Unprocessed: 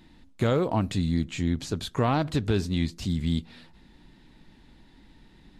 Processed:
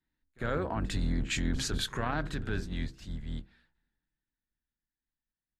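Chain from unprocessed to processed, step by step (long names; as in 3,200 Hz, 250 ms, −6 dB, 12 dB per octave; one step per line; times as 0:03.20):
sub-octave generator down 2 octaves, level +1 dB
source passing by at 0:01.52, 6 m/s, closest 2.5 metres
parametric band 1,600 Hz +13 dB 0.65 octaves
hum removal 65.48 Hz, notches 7
brickwall limiter −24 dBFS, peak gain reduction 11 dB
on a send: backwards echo 51 ms −15 dB
on the sum: multiband upward and downward expander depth 70%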